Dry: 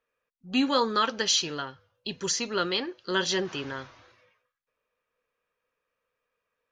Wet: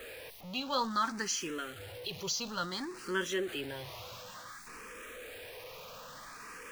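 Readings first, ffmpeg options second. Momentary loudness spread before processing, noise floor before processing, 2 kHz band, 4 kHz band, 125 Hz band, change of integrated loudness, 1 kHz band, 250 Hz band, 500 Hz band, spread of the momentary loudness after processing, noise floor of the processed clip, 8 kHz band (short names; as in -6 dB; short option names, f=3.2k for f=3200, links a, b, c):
14 LU, -84 dBFS, -5.5 dB, -9.0 dB, -5.0 dB, -10.5 dB, -5.5 dB, -9.0 dB, -7.5 dB, 15 LU, -49 dBFS, -6.5 dB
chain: -filter_complex "[0:a]aeval=exprs='val(0)+0.5*0.0251*sgn(val(0))':c=same,asplit=2[a][b];[b]afreqshift=0.57[c];[a][c]amix=inputs=2:normalize=1,volume=-6dB"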